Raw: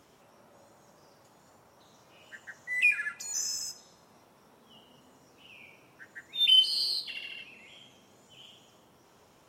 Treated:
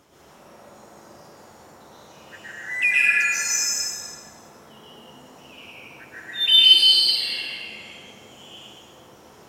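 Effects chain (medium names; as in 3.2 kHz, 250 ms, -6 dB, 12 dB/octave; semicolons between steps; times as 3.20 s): plate-style reverb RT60 2.1 s, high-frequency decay 0.6×, pre-delay 105 ms, DRR -9 dB; trim +2.5 dB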